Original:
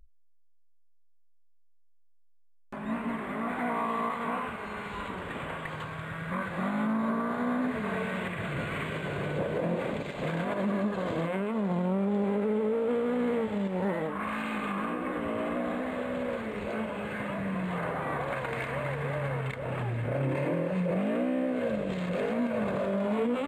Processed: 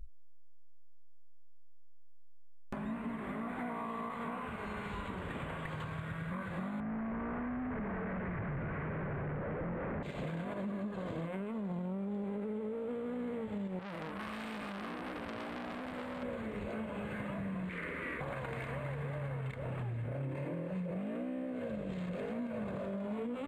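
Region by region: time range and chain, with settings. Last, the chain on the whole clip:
0:06.80–0:10.03: comparator with hysteresis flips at −48 dBFS + Butterworth low-pass 2,100 Hz
0:13.79–0:16.23: bass and treble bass 0 dB, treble +5 dB + saturating transformer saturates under 2,300 Hz
0:17.69–0:18.21: parametric band 2,100 Hz +11.5 dB 0.57 octaves + phaser with its sweep stopped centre 320 Hz, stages 4 + highs frequency-modulated by the lows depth 0.15 ms
whole clip: low-shelf EQ 200 Hz +9 dB; downward compressor 5 to 1, threshold −42 dBFS; level +3.5 dB

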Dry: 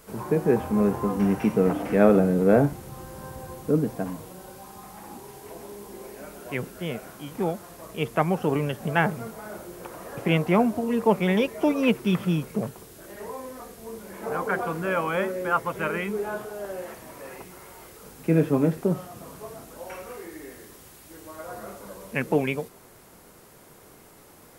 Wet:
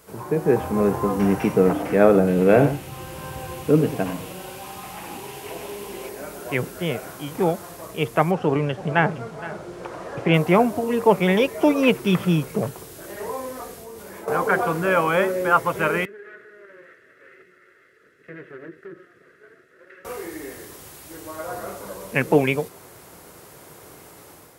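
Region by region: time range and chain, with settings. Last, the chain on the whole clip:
0:02.27–0:06.09: parametric band 2,700 Hz +11 dB 0.73 octaves + single-tap delay 99 ms −11 dB
0:08.31–0:10.34: high-frequency loss of the air 87 metres + single-tap delay 464 ms −16.5 dB
0:13.78–0:14.28: tuned comb filter 84 Hz, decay 1.3 s, mix 80% + envelope flattener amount 70%
0:16.05–0:20.05: lower of the sound and its delayed copy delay 1.5 ms + pair of resonant band-passes 790 Hz, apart 2.2 octaves + downward compressor 1.5 to 1, threshold −49 dBFS
whole clip: high-pass filter 57 Hz; parametric band 220 Hz −7.5 dB 0.31 octaves; automatic gain control gain up to 6.5 dB

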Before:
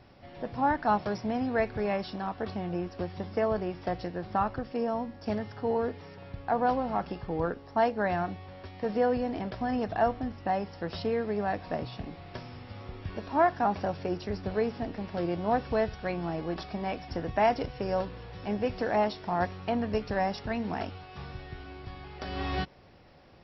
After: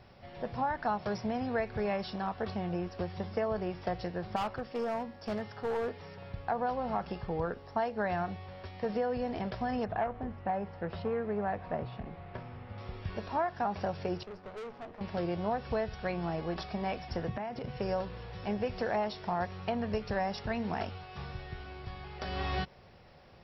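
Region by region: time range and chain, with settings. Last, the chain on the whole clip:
0:04.36–0:06.00: low-shelf EQ 170 Hz −7 dB + gain into a clipping stage and back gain 27.5 dB
0:09.85–0:12.78: low-pass filter 2,100 Hz + saturating transformer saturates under 640 Hz
0:14.23–0:15.01: resonant band-pass 680 Hz, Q 0.6 + tube saturation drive 39 dB, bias 0.75
0:17.28–0:17.77: high-pass filter 180 Hz + downward compressor 12 to 1, threshold −35 dBFS + bass and treble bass +13 dB, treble −6 dB
whole clip: parametric band 290 Hz −11 dB 0.27 octaves; downward compressor 6 to 1, threshold −28 dBFS

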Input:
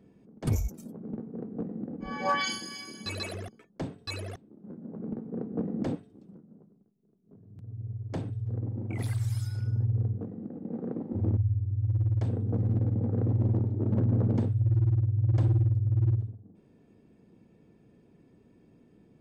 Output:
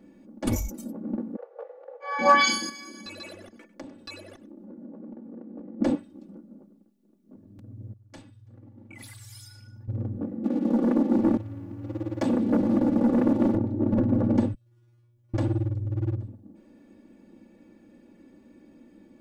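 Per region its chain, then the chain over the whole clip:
0:01.36–0:02.19: Butterworth high-pass 430 Hz 96 dB per octave + high-frequency loss of the air 140 metres
0:02.69–0:05.81: parametric band 410 Hz +3.5 dB 1.5 octaves + downward compressor 4 to 1, threshold −48 dBFS + single-tap delay 99 ms −16 dB
0:07.93–0:09.88: guitar amp tone stack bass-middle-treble 5-5-5 + hum removal 241.6 Hz, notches 25
0:10.44–0:13.55: high-pass filter 170 Hz 24 dB per octave + leveller curve on the samples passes 2
0:14.54–0:15.34: first-order pre-emphasis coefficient 0.97 + tuned comb filter 120 Hz, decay 0.42 s, mix 100% + envelope flattener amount 50%
whole clip: parametric band 66 Hz −15 dB 0.94 octaves; comb filter 3.5 ms, depth 97%; level +4.5 dB

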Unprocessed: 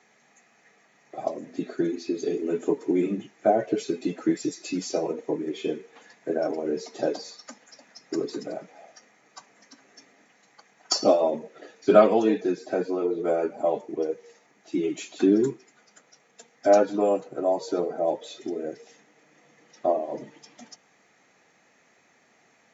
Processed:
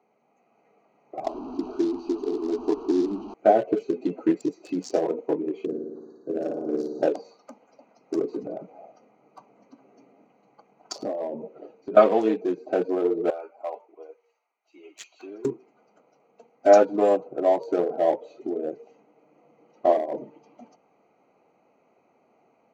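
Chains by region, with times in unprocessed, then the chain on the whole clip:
0:01.24–0:03.34: linear delta modulator 32 kbit/s, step −28.5 dBFS + parametric band 2,000 Hz −6 dB 0.33 octaves + phaser with its sweep stopped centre 530 Hz, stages 6
0:05.65–0:07.02: Chebyshev band-stop filter 1,700–3,800 Hz, order 4 + parametric band 820 Hz −13 dB 1.4 octaves + flutter between parallel walls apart 9.6 metres, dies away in 1.2 s
0:08.43–0:11.97: low-shelf EQ 210 Hz +9.5 dB + downward compressor 4 to 1, threshold −31 dBFS
0:13.30–0:15.45: high-pass filter 1,300 Hz + multiband upward and downward expander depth 40%
whole clip: adaptive Wiener filter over 25 samples; bass and treble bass −8 dB, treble −3 dB; automatic gain control gain up to 4.5 dB

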